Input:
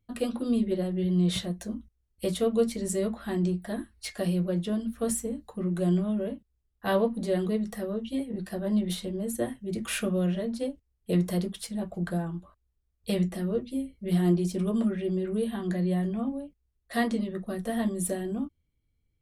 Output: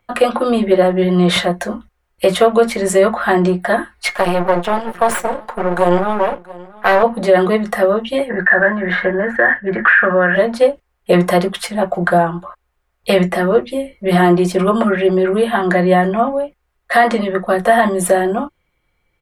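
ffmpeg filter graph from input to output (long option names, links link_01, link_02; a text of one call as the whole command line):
ffmpeg -i in.wav -filter_complex "[0:a]asettb=1/sr,asplit=3[link_01][link_02][link_03];[link_01]atrim=end=4.084[link_04];[link_02]atrim=start=4.08:end=7.03,asetpts=PTS-STARTPTS,afade=type=in:duration=0.004:curve=qsin,afade=type=out:start_time=2.946:duration=0.004:curve=qsin,aecho=1:1:678:0.075,atrim=end_sample=130095,aeval=exprs='max(val(0),0)':channel_layout=same[link_05];[link_03]atrim=start=7.026[link_06];[link_04][link_05]acrossfade=duration=0.004:curve1=hsin:curve2=qsin[link_07];[link_07][link_06]acrossfade=duration=0.004:curve1=qsin:curve2=hsin,asettb=1/sr,asplit=3[link_08][link_09][link_10];[link_08]atrim=end=8.294[link_11];[link_09]atrim=start=8.29:end=10.36,asetpts=PTS-STARTPTS,afade=type=in:duration=0.004:curve=qsin,afade=type=out:start_time=2.066:duration=0.004:curve=qsin,lowpass=frequency=1700:width_type=q:width=16,acompressor=threshold=-28dB:ratio=10:attack=3.2:release=140:knee=1:detection=peak[link_12];[link_10]atrim=start=10.356[link_13];[link_11][link_12]acrossfade=duration=0.004:curve1=hsin:curve2=qsin[link_14];[link_14][link_13]acrossfade=duration=0.004:curve1=qsin:curve2=hsin,acrossover=split=570 2200:gain=0.0891 1 0.141[link_15][link_16][link_17];[link_15][link_16][link_17]amix=inputs=3:normalize=0,aecho=1:1:5.6:0.35,alimiter=level_in=28.5dB:limit=-1dB:release=50:level=0:latency=1,volume=-1dB" out.wav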